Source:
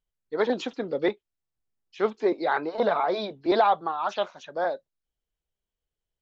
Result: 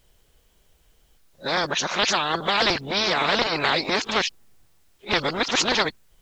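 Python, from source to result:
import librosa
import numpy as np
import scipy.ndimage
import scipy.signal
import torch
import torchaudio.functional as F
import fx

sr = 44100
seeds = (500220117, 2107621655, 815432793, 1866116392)

y = x[::-1].copy()
y = fx.spectral_comp(y, sr, ratio=4.0)
y = y * librosa.db_to_amplitude(4.0)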